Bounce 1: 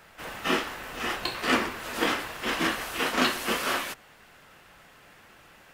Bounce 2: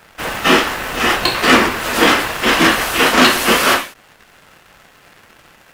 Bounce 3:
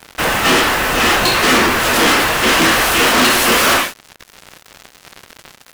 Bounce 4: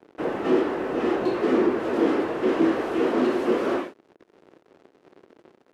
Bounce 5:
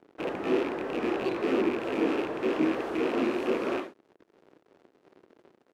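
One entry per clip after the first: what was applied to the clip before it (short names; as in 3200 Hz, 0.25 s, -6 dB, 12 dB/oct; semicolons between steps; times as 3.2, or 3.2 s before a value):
sample leveller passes 2; ending taper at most 160 dB/s; gain +8.5 dB
sample leveller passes 5; gain -8 dB
band-pass 360 Hz, Q 2.5
rattling part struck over -33 dBFS, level -22 dBFS; shaped vibrato saw up 3.1 Hz, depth 100 cents; gain -5.5 dB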